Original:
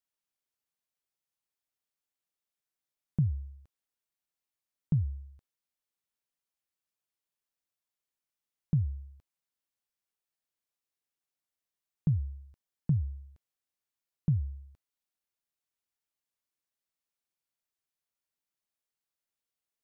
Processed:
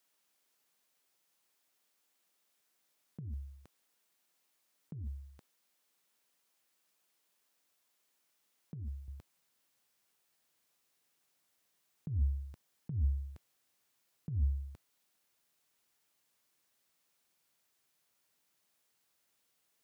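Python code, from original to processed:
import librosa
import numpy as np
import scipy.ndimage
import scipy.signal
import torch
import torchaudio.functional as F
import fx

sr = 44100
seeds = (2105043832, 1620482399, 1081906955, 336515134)

y = fx.over_compress(x, sr, threshold_db=-33.0, ratio=-0.5)
y = fx.highpass(y, sr, hz=fx.steps((0.0, 190.0), (9.08, 96.0)), slope=12)
y = F.gain(torch.from_numpy(y), 8.5).numpy()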